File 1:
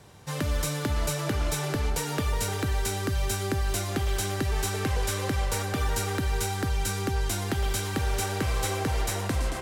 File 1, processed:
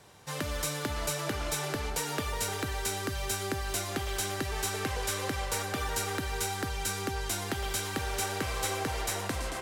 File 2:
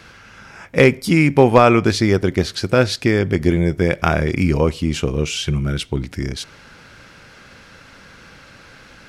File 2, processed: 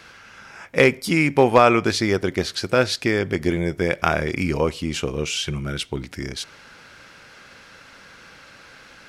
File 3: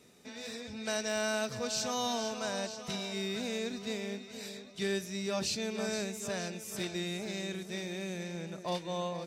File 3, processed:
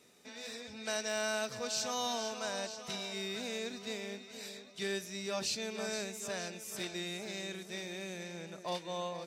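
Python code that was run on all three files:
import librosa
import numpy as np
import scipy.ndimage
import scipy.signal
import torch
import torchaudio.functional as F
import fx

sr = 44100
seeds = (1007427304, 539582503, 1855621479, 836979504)

y = fx.low_shelf(x, sr, hz=270.0, db=-9.0)
y = y * librosa.db_to_amplitude(-1.0)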